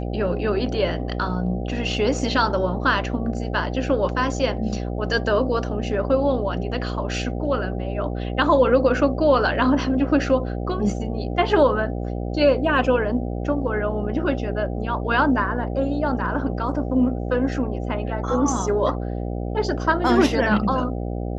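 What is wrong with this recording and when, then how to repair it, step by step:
buzz 60 Hz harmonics 13 -27 dBFS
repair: de-hum 60 Hz, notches 13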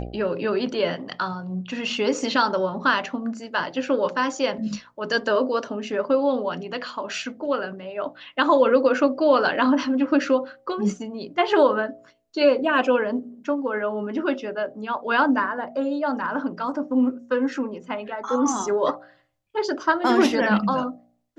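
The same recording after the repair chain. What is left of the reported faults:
nothing left

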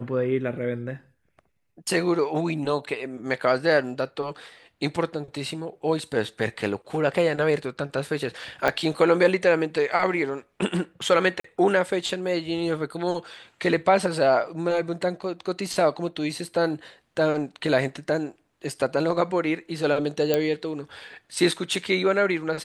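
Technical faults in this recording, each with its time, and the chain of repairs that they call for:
8.68 s: pop -9 dBFS
11.40–11.44 s: dropout 44 ms
20.34 s: pop -8 dBFS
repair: de-click; interpolate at 11.40 s, 44 ms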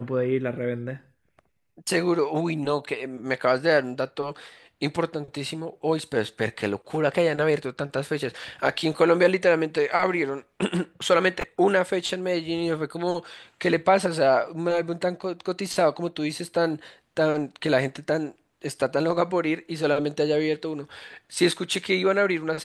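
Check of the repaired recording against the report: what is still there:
8.68 s: pop

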